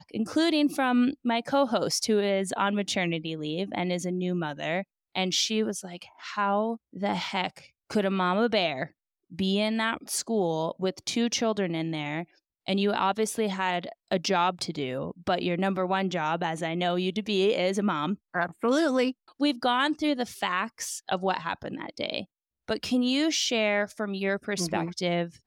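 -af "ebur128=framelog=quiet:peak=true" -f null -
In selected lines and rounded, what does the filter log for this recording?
Integrated loudness:
  I:         -27.7 LUFS
  Threshold: -37.9 LUFS
Loudness range:
  LRA:         2.7 LU
  Threshold: -48.1 LUFS
  LRA low:   -29.3 LUFS
  LRA high:  -26.6 LUFS
True peak:
  Peak:      -12.5 dBFS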